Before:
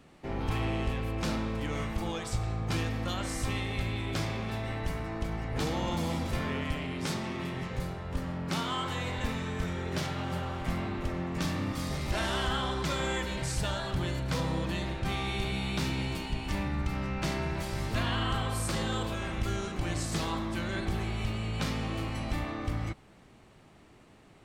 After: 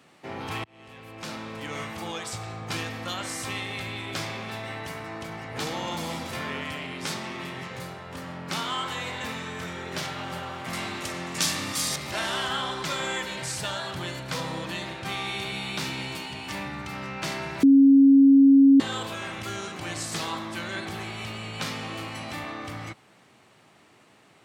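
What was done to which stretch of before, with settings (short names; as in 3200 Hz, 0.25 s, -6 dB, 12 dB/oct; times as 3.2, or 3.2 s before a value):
0.64–1.78 fade in linear
10.73–11.96 bell 8500 Hz +14.5 dB 2.4 oct
17.63–18.8 bleep 274 Hz -9 dBFS
whole clip: HPF 97 Hz 24 dB/oct; low shelf 500 Hz -9.5 dB; gain +5 dB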